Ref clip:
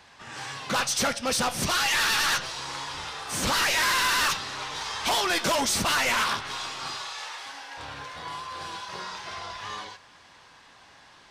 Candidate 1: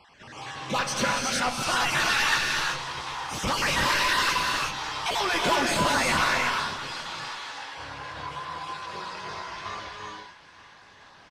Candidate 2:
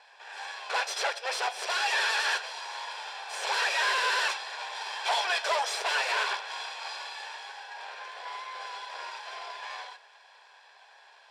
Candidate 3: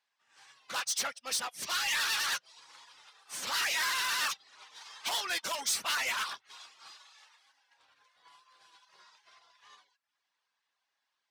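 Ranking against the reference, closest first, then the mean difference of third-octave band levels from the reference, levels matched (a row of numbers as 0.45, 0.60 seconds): 1, 2, 3; 4.0, 9.5, 13.0 decibels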